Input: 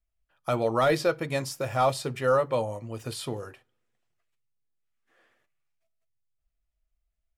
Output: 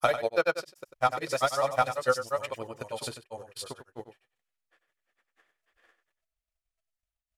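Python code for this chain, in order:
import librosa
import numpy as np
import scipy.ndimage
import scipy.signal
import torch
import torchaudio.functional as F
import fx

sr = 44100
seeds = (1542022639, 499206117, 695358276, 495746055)

p1 = fx.low_shelf(x, sr, hz=420.0, db=-11.0)
p2 = fx.transient(p1, sr, attack_db=9, sustain_db=-5)
p3 = fx.granulator(p2, sr, seeds[0], grain_ms=100.0, per_s=20.0, spray_ms=792.0, spread_st=0)
y = p3 + fx.echo_single(p3, sr, ms=95, db=-10.5, dry=0)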